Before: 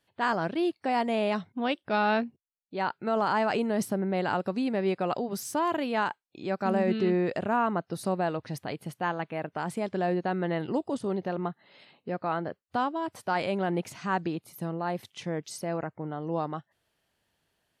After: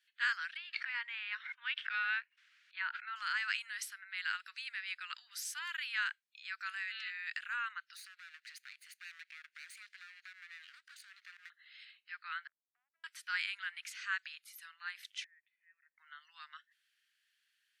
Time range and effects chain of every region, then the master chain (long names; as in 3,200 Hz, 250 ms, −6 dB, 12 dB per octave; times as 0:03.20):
0:00.57–0:03.16: low-pass filter 2,400 Hz + hollow resonant body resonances 280/910 Hz, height 8 dB, ringing for 30 ms + background raised ahead of every attack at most 45 dB per second
0:07.96–0:11.50: lower of the sound and its delayed copy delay 0.46 ms + high-pass filter 1,400 Hz 6 dB per octave + downward compressor 10 to 1, threshold −44 dBFS
0:12.47–0:13.04: Chebyshev low-pass filter 690 Hz, order 5 + downward compressor 4 to 1, threshold −41 dBFS
0:15.24–0:15.98: downward compressor 2.5 to 1, threshold −42 dBFS + formant resonators in series e
whole clip: Butterworth high-pass 1,500 Hz 48 dB per octave; high-shelf EQ 6,900 Hz −9.5 dB; level +2 dB